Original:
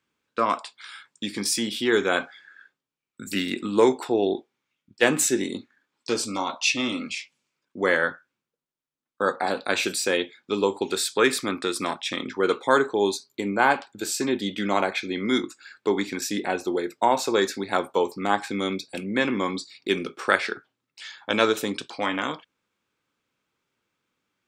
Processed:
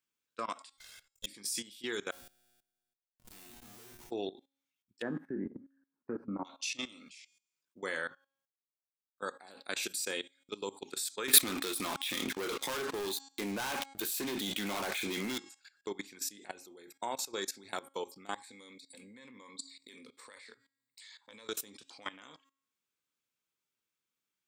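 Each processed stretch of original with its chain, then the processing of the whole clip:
0:00.73–0:01.26: lower of the sound and its delayed copy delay 1.9 ms + comb filter 1.5 ms, depth 44%
0:02.11–0:04.11: dynamic equaliser 120 Hz, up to +5 dB, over −39 dBFS, Q 1.1 + comparator with hysteresis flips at −31.5 dBFS + tuned comb filter 120 Hz, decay 1.1 s, mix 90%
0:05.02–0:06.45: elliptic low-pass filter 1,700 Hz, stop band 50 dB + parametric band 200 Hz +13 dB 1.8 octaves
0:11.28–0:15.38: flat-topped bell 6,400 Hz −12 dB 1.1 octaves + leveller curve on the samples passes 5
0:18.34–0:21.49: EQ curve with evenly spaced ripples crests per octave 0.99, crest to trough 12 dB + downward compressor 12 to 1, threshold −26 dBFS
whole clip: first-order pre-emphasis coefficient 0.8; hum removal 273.2 Hz, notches 32; output level in coarse steps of 18 dB

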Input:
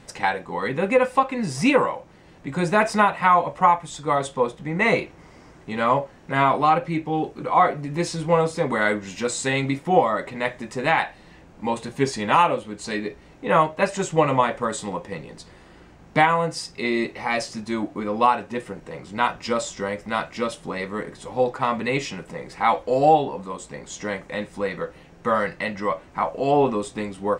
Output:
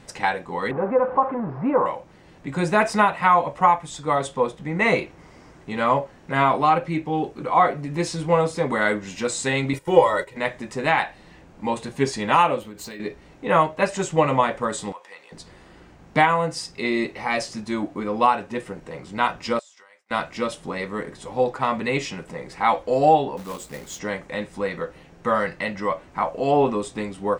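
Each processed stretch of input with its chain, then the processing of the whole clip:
0:00.71–0:01.86: converter with a step at zero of −21 dBFS + low-pass filter 1,100 Hz 24 dB per octave + spectral tilt +3 dB per octave
0:09.73–0:10.37: noise gate −33 dBFS, range −11 dB + high-shelf EQ 6,800 Hz +12 dB + comb filter 2.1 ms, depth 81%
0:12.60–0:13.00: downward compressor 12 to 1, threshold −33 dBFS + high-shelf EQ 7,800 Hz +7 dB + linearly interpolated sample-rate reduction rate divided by 2×
0:14.92–0:15.32: high-pass filter 920 Hz + downward compressor 1.5 to 1, threshold −45 dBFS
0:19.59–0:20.11: high-pass filter 1,000 Hz + downward expander −38 dBFS + downward compressor 20 to 1, threshold −47 dBFS
0:23.37–0:23.99: notch filter 990 Hz, Q 14 + log-companded quantiser 4 bits
whole clip: no processing

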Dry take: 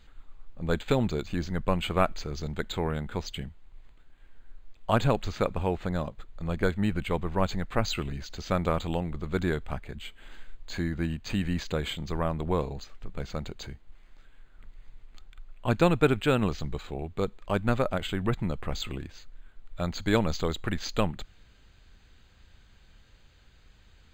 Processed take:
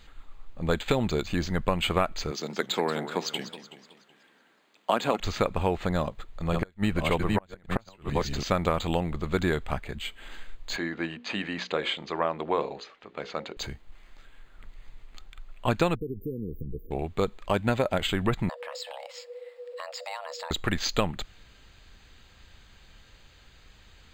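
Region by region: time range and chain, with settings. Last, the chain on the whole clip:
0:02.31–0:05.20: high-pass filter 200 Hz 24 dB per octave + feedback echo with a swinging delay time 187 ms, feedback 48%, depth 210 cents, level −11.5 dB
0:05.97–0:08.43: delay that plays each chunk backwards 564 ms, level −2 dB + gate with flip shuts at −15 dBFS, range −33 dB
0:10.76–0:13.57: band-pass filter 310–3,800 Hz + mains-hum notches 60/120/180/240/300/360/420/480/540 Hz
0:15.95–0:16.91: downward compressor 10 to 1, threshold −31 dBFS + linear-phase brick-wall band-stop 510–10,000 Hz
0:17.53–0:17.98: high-pass filter 42 Hz + notch filter 1,200 Hz, Q 5.4
0:18.49–0:20.51: low-shelf EQ 430 Hz −6 dB + frequency shifter +480 Hz + downward compressor 4 to 1, threshold −42 dBFS
whole clip: low-shelf EQ 370 Hz −5.5 dB; notch filter 1,500 Hz, Q 22; downward compressor, threshold −27 dBFS; level +7 dB

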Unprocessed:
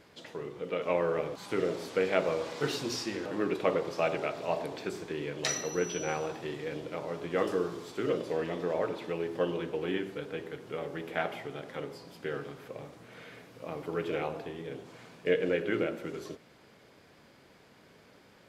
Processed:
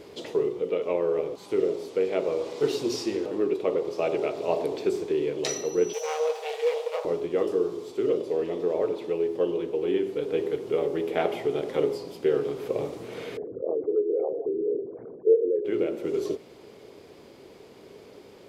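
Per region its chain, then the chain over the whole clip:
0:05.93–0:07.05: lower of the sound and its delayed copy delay 6.3 ms + linear-phase brick-wall high-pass 430 Hz
0:13.37–0:15.65: spectral envelope exaggerated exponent 3 + Butterworth low-pass 1,700 Hz + one half of a high-frequency compander decoder only
whole clip: graphic EQ with 15 bands 160 Hz −3 dB, 400 Hz +11 dB, 1,600 Hz −8 dB; speech leveller 0.5 s

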